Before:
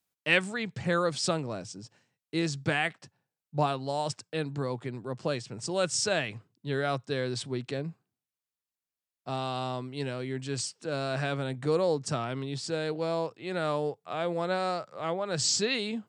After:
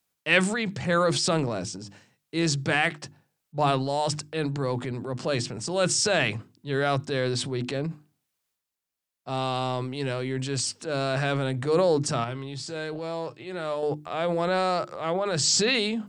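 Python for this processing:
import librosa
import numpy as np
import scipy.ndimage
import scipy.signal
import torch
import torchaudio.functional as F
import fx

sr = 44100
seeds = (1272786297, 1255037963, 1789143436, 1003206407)

y = fx.hum_notches(x, sr, base_hz=50, count=7)
y = fx.transient(y, sr, attack_db=-4, sustain_db=7)
y = fx.comb_fb(y, sr, f0_hz=120.0, decay_s=0.18, harmonics='odd', damping=0.0, mix_pct=60, at=(12.24, 13.83))
y = y * librosa.db_to_amplitude(5.0)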